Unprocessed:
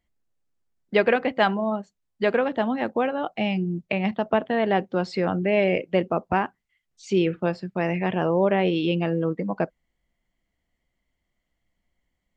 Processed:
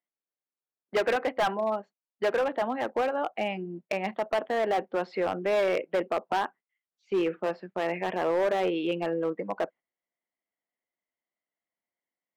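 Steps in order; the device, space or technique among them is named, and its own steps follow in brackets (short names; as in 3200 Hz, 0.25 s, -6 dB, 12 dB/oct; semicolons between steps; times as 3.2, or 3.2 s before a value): walkie-talkie (BPF 400–2200 Hz; hard clip -21 dBFS, distortion -10 dB; gate -47 dBFS, range -10 dB)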